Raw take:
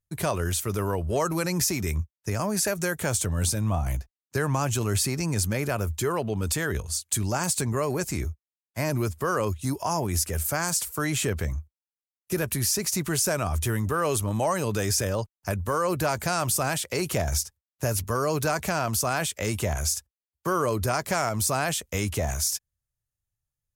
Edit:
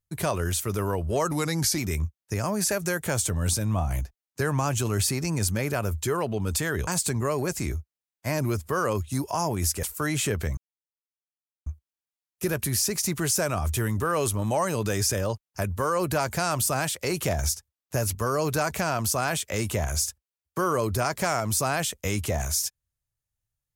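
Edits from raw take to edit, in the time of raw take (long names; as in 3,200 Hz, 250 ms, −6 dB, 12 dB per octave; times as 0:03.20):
0:01.31–0:01.74: play speed 91%
0:06.83–0:07.39: remove
0:10.35–0:10.81: remove
0:11.55: splice in silence 1.09 s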